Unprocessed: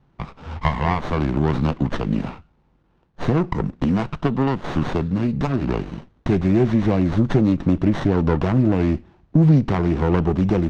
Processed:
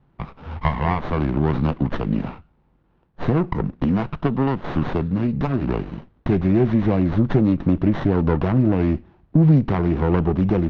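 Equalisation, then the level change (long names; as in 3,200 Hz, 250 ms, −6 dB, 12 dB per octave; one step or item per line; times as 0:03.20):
high-frequency loss of the air 180 metres
0.0 dB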